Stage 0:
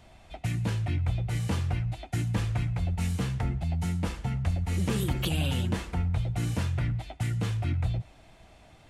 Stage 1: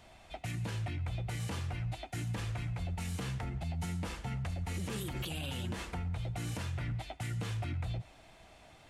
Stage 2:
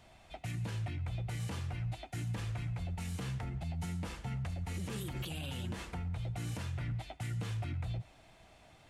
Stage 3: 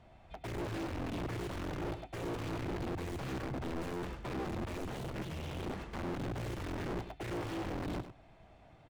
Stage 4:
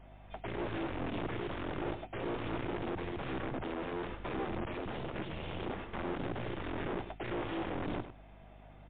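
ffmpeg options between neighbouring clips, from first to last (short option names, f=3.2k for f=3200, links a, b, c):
-af "lowshelf=f=320:g=-6.5,alimiter=level_in=5.5dB:limit=-24dB:level=0:latency=1:release=69,volume=-5.5dB"
-af "equalizer=f=130:w=1.2:g=3,volume=-3dB"
-af "aeval=exprs='(mod(53.1*val(0)+1,2)-1)/53.1':c=same,lowpass=f=1.1k:p=1,aecho=1:1:100:0.282,volume=2dB"
-filter_complex "[0:a]acrossover=split=240[a][b];[a]aeval=exprs='max(val(0),0)':c=same[c];[c][b]amix=inputs=2:normalize=0,aeval=exprs='val(0)+0.00141*(sin(2*PI*50*n/s)+sin(2*PI*2*50*n/s)/2+sin(2*PI*3*50*n/s)/3+sin(2*PI*4*50*n/s)/4+sin(2*PI*5*50*n/s)/5)':c=same,volume=3dB" -ar 8000 -c:a libmp3lame -b:a 32k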